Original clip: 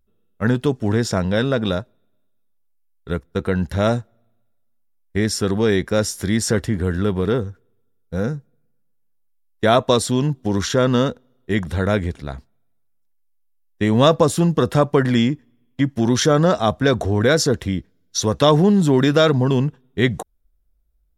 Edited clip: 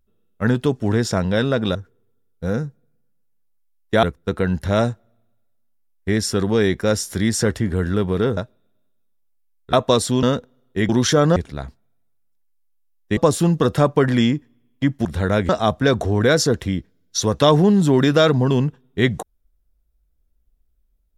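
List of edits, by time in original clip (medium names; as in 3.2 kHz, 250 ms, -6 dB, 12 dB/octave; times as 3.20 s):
1.75–3.11 s: swap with 7.45–9.73 s
10.23–10.96 s: delete
11.62–12.06 s: swap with 16.02–16.49 s
13.87–14.14 s: delete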